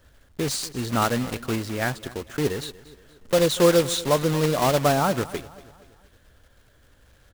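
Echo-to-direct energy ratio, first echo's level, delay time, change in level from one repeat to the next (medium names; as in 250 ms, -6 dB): -18.0 dB, -19.0 dB, 237 ms, -7.0 dB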